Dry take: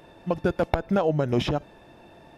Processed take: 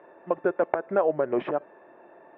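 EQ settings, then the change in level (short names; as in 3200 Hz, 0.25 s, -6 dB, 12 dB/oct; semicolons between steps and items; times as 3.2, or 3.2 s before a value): air absorption 61 m; speaker cabinet 360–2100 Hz, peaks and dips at 380 Hz +6 dB, 580 Hz +5 dB, 1100 Hz +5 dB, 1700 Hz +3 dB; -2.0 dB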